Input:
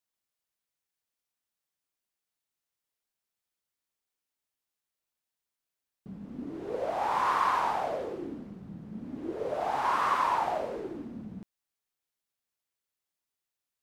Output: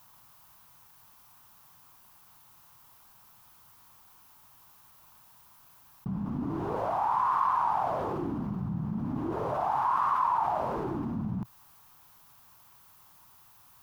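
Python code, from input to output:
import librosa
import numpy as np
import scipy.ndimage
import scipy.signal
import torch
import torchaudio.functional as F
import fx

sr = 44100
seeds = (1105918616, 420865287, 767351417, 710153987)

y = fx.graphic_eq(x, sr, hz=(125, 250, 500, 1000, 2000, 4000, 8000), db=(7, -3, -12, 11, -9, -6, -9))
y = fx.env_flatten(y, sr, amount_pct=70)
y = F.gain(torch.from_numpy(y), -6.5).numpy()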